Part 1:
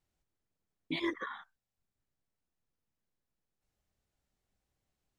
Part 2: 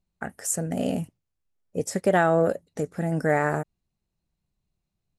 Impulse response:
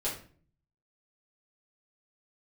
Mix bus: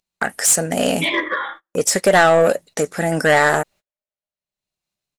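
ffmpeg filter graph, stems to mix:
-filter_complex "[0:a]lowpass=f=3.2k:w=0.5412,lowpass=f=3.2k:w=1.3066,equalizer=f=590:w=4.7:g=12.5,adelay=100,volume=2dB,asplit=2[a][b];[b]volume=-9dB[c];[1:a]agate=range=-23dB:threshold=-55dB:ratio=16:detection=peak,acompressor=mode=upward:threshold=-32dB:ratio=2.5,volume=2dB[d];[2:a]atrim=start_sample=2205[e];[c][e]afir=irnorm=-1:irlink=0[f];[a][d][f]amix=inputs=3:normalize=0,agate=range=-30dB:threshold=-48dB:ratio=16:detection=peak,highshelf=f=2.5k:g=8.5,asplit=2[g][h];[h]highpass=f=720:p=1,volume=18dB,asoftclip=type=tanh:threshold=-3dB[i];[g][i]amix=inputs=2:normalize=0,lowpass=f=6.3k:p=1,volume=-6dB"

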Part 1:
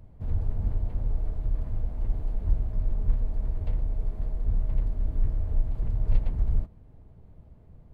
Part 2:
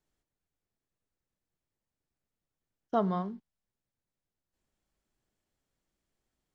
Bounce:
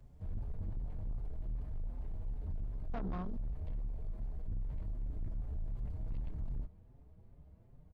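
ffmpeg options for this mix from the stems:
-filter_complex "[0:a]asplit=2[a][b];[b]adelay=5.4,afreqshift=2.6[c];[a][c]amix=inputs=2:normalize=1,volume=-4.5dB[d];[1:a]volume=1dB[e];[d][e]amix=inputs=2:normalize=0,acrossover=split=170[f][g];[g]acompressor=threshold=-36dB:ratio=5[h];[f][h]amix=inputs=2:normalize=0,asoftclip=type=tanh:threshold=-34dB"

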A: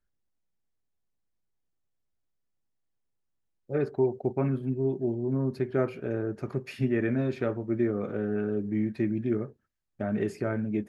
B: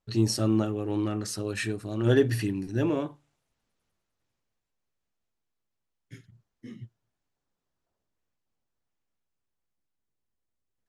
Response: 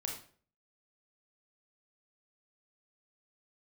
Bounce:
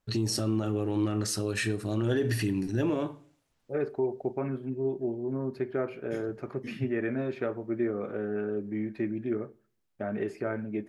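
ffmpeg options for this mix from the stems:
-filter_complex "[0:a]bass=f=250:g=-8,treble=f=4k:g=-8,volume=-1dB,asplit=2[a][b];[b]volume=-18.5dB[c];[1:a]volume=2dB,asplit=2[d][e];[e]volume=-12.5dB[f];[2:a]atrim=start_sample=2205[g];[c][f]amix=inputs=2:normalize=0[h];[h][g]afir=irnorm=-1:irlink=0[i];[a][d][i]amix=inputs=3:normalize=0,alimiter=limit=-19.5dB:level=0:latency=1:release=102"

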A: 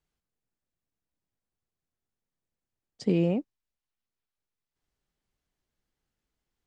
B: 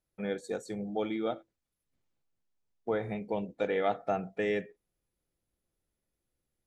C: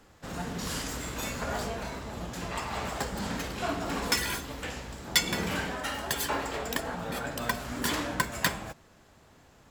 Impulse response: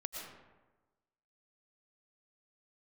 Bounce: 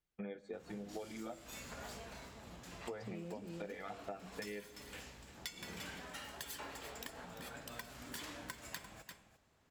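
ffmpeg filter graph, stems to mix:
-filter_complex "[0:a]alimiter=limit=-17.5dB:level=0:latency=1,volume=-7.5dB,asplit=2[a][b];[b]volume=-5dB[c];[1:a]lowpass=3.2k,agate=range=-17dB:threshold=-52dB:ratio=16:detection=peak,asplit=2[d][e];[e]adelay=9.1,afreqshift=2.1[f];[d][f]amix=inputs=2:normalize=1,volume=1.5dB,asplit=2[g][h];[h]volume=-21dB[i];[2:a]adynamicequalizer=threshold=0.00562:dfrequency=2700:dqfactor=0.7:tfrequency=2700:tqfactor=0.7:attack=5:release=100:ratio=0.375:range=2.5:mode=boostabove:tftype=highshelf,adelay=300,volume=-16dB,asplit=2[j][k];[k]volume=-13.5dB[l];[3:a]atrim=start_sample=2205[m];[i][m]afir=irnorm=-1:irlink=0[n];[c][l]amix=inputs=2:normalize=0,aecho=0:1:345:1[o];[a][g][j][n][o]amix=inputs=5:normalize=0,equalizer=f=2.3k:w=1.5:g=2.5,acompressor=threshold=-42dB:ratio=10"

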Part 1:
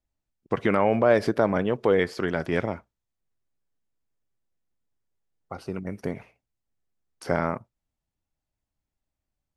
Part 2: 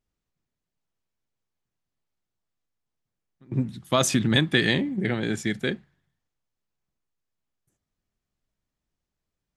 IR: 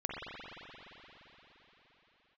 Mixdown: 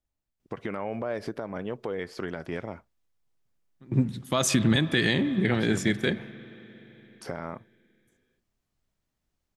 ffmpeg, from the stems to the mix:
-filter_complex "[0:a]acompressor=threshold=-26dB:ratio=2.5,alimiter=limit=-17.5dB:level=0:latency=1:release=333,volume=-2.5dB[a];[1:a]adelay=400,volume=1.5dB,asplit=2[b][c];[c]volume=-20.5dB[d];[2:a]atrim=start_sample=2205[e];[d][e]afir=irnorm=-1:irlink=0[f];[a][b][f]amix=inputs=3:normalize=0,alimiter=limit=-12dB:level=0:latency=1:release=109"

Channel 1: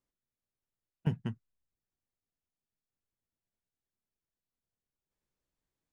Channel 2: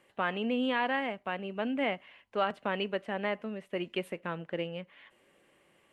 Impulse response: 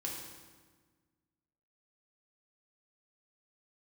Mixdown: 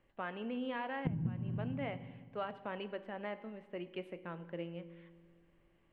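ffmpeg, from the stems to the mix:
-filter_complex "[0:a]equalizer=f=210:t=o:w=0.83:g=8.5,acompressor=threshold=-27dB:ratio=6,aemphasis=mode=reproduction:type=riaa,volume=-3dB,asplit=2[a][b];[b]volume=-3dB[c];[1:a]volume=-11dB,asplit=3[d][e][f];[e]volume=-9dB[g];[f]apad=whole_len=261332[h];[a][h]sidechaincompress=threshold=-44dB:ratio=8:attack=16:release=302[i];[2:a]atrim=start_sample=2205[j];[c][g]amix=inputs=2:normalize=0[k];[k][j]afir=irnorm=-1:irlink=0[l];[i][d][l]amix=inputs=3:normalize=0,aemphasis=mode=reproduction:type=75fm,acompressor=threshold=-32dB:ratio=16"

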